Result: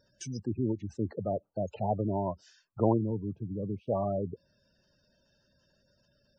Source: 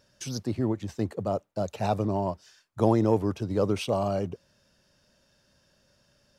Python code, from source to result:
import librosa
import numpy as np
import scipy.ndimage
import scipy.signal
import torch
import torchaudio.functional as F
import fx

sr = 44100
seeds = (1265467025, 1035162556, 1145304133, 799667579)

y = fx.spec_gate(x, sr, threshold_db=-15, keep='strong')
y = fx.bandpass_q(y, sr, hz=150.0, q=1.2, at=(2.97, 3.87), fade=0.02)
y = y * 10.0 ** (-3.0 / 20.0)